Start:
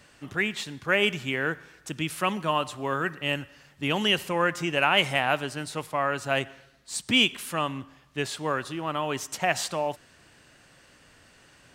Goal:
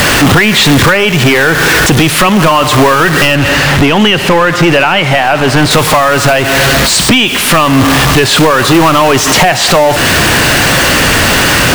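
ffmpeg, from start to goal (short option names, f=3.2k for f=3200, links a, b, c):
-filter_complex "[0:a]aeval=exprs='val(0)+0.5*0.0422*sgn(val(0))':c=same,acrossover=split=4400[a][b];[b]acompressor=threshold=-38dB:ratio=4:attack=1:release=60[c];[a][c]amix=inputs=2:normalize=0,asettb=1/sr,asplit=3[d][e][f];[d]atrim=end=3.354[g];[e]atrim=start=3.35:end=5.71,asetpts=PTS-STARTPTS,afade=t=in:d=0.004:c=qsin,afade=t=out:st=2.356:d=0.004:c=qsin,highshelf=f=6.5k:g=-9.5[h];[f]atrim=start=5.706[i];[g][h]acrossfade=d=0.004:c1=hsin:c2=qsin[j];[j][i]acrossfade=d=0.004:c1=qsin:c2=hsin,acompressor=threshold=-27dB:ratio=20,apsyclip=27.5dB,volume=-1.5dB"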